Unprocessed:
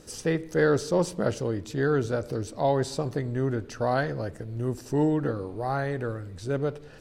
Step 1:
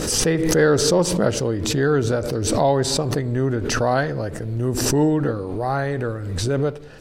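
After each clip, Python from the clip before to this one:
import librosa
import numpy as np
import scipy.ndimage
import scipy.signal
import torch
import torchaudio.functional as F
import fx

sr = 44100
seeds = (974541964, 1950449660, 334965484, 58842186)

y = fx.pre_swell(x, sr, db_per_s=32.0)
y = y * librosa.db_to_amplitude(5.5)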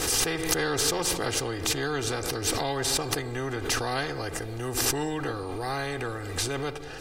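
y = x + 0.86 * np.pad(x, (int(2.5 * sr / 1000.0), 0))[:len(x)]
y = fx.spectral_comp(y, sr, ratio=2.0)
y = y * librosa.db_to_amplitude(-5.5)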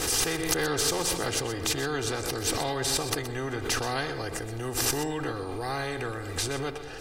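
y = x + 10.0 ** (-12.0 / 20.0) * np.pad(x, (int(125 * sr / 1000.0), 0))[:len(x)]
y = y * librosa.db_to_amplitude(-1.0)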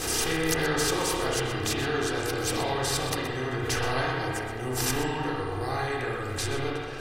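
y = fx.rev_spring(x, sr, rt60_s=1.6, pass_ms=(31, 59), chirp_ms=75, drr_db=-3.5)
y = y * librosa.db_to_amplitude(-2.5)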